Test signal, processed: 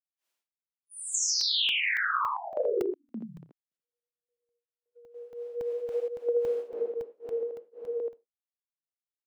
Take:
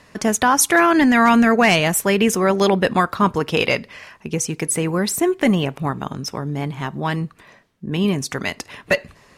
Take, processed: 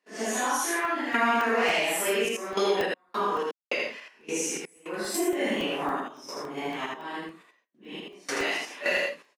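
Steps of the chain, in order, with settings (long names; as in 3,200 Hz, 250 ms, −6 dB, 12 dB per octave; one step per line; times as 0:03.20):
random phases in long frames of 200 ms
noise gate −46 dBFS, range −21 dB
sample-and-hold tremolo 3.5 Hz, depth 100%
high-pass filter 280 Hz 24 dB per octave
parametric band 2,700 Hz +3 dB 0.77 octaves
on a send: ambience of single reflections 31 ms −15.5 dB, 63 ms −12.5 dB, 80 ms −3 dB
on the sum: downward compressor 2.5 to 1, threshold −26 dBFS
high-shelf EQ 11,000 Hz −4.5 dB
regular buffer underruns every 0.28 s, samples 64, zero, from 0:00.85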